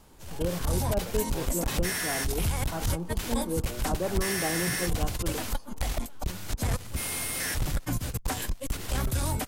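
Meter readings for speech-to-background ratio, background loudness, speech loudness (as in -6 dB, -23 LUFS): -3.5 dB, -31.0 LUFS, -34.5 LUFS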